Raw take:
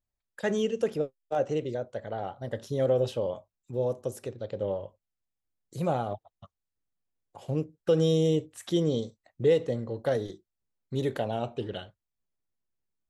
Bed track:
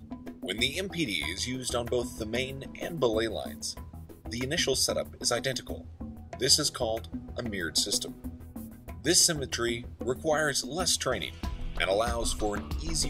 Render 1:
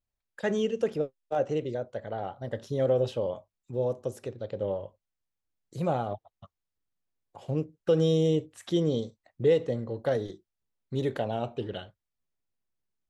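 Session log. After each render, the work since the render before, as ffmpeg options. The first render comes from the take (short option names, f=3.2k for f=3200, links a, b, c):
-af "highshelf=f=9.1k:g=-11"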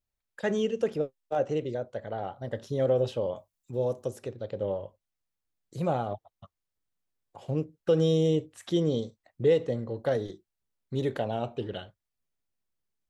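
-filter_complex "[0:a]asettb=1/sr,asplit=3[a][b][c];[a]atrim=end=3.364[d];[b]atrim=start=3.36:end=4.08,asetpts=PTS-STARTPTS,afade=t=in:d=0.004:c=qsin,afade=t=out:st=0.716:d=0.004:c=qsin,highshelf=f=5.4k:g=9.5[e];[c]atrim=start=4.076[f];[d][e]acrossfade=d=0.004:c1=hsin:c2=qsin[g];[g][f]acrossfade=d=0.004:c1=qsin:c2=hsin"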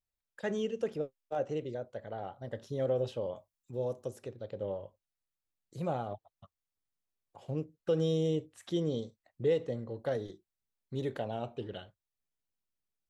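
-af "volume=-6dB"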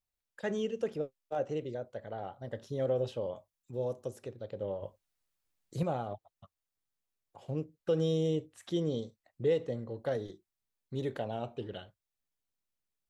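-filter_complex "[0:a]asplit=3[a][b][c];[a]atrim=end=4.822[d];[b]atrim=start=4.818:end=5.832,asetpts=PTS-STARTPTS,volume=6.5dB[e];[c]atrim=start=5.828[f];[d][e]acrossfade=d=0.004:c1=hsin:c2=hsin[g];[g][f]acrossfade=d=0.004:c1=hsin:c2=hsin"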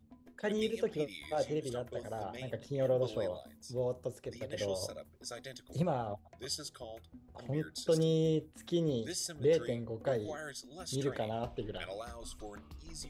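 -filter_complex "[1:a]volume=-16.5dB[a];[0:a][a]amix=inputs=2:normalize=0"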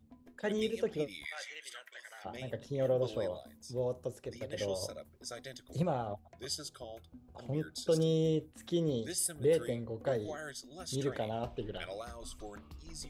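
-filter_complex "[0:a]asplit=3[a][b][c];[a]afade=t=out:st=1.24:d=0.02[d];[b]highpass=f=1.9k:t=q:w=3.7,afade=t=in:st=1.24:d=0.02,afade=t=out:st=2.24:d=0.02[e];[c]afade=t=in:st=2.24:d=0.02[f];[d][e][f]amix=inputs=3:normalize=0,asettb=1/sr,asplit=3[g][h][i];[g]atrim=end=6.604[j];[h]atrim=start=6.6:end=8.06,asetpts=PTS-STARTPTS,afade=t=in:d=0.004:c=qsin,afade=t=out:st=1.456:d=0.004:c=qsin,bandreject=f=1.9k:w=5.2[k];[i]atrim=start=8.056[l];[j][k]acrossfade=d=0.004:c1=hsin:c2=qsin[m];[m][l]acrossfade=d=0.004:c1=qsin:c2=hsin,asettb=1/sr,asplit=3[n][o][p];[n]atrim=end=9.184[q];[o]atrim=start=9.18:end=9.7,asetpts=PTS-STARTPTS,afade=t=in:d=0.004:c=qsin,afade=t=out:st=0.516:d=0.004:c=qsin,highshelf=f=7.8k:t=q:w=3:g=8[r];[p]atrim=start=9.696[s];[q][r]acrossfade=d=0.004:c1=hsin:c2=qsin[t];[t][s]acrossfade=d=0.004:c1=qsin:c2=hsin"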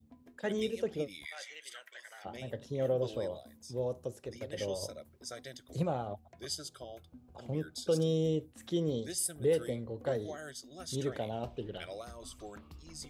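-af "highpass=48,adynamicequalizer=threshold=0.00316:dfrequency=1500:dqfactor=0.81:tfrequency=1500:tqfactor=0.81:attack=5:release=100:ratio=0.375:range=2.5:mode=cutabove:tftype=bell"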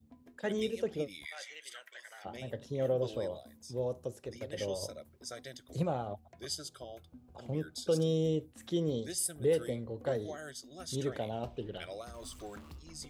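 -filter_complex "[0:a]asettb=1/sr,asplit=3[a][b][c];[a]atrim=end=12.144[d];[b]atrim=start=12.14:end=12.79,asetpts=PTS-STARTPTS,afade=t=in:d=0.004:c=qsin,afade=t=out:st=0.646:d=0.004:c=qsin,aeval=exprs='val(0)+0.5*0.00224*sgn(val(0))':c=same[e];[c]atrim=start=12.786[f];[d][e]acrossfade=d=0.004:c1=hsin:c2=qsin[g];[g][f]acrossfade=d=0.004:c1=qsin:c2=hsin"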